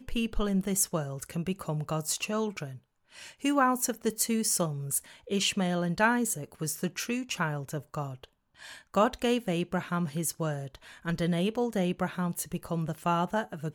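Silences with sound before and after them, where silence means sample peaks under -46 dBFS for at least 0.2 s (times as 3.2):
2.78–3.14
8.25–8.6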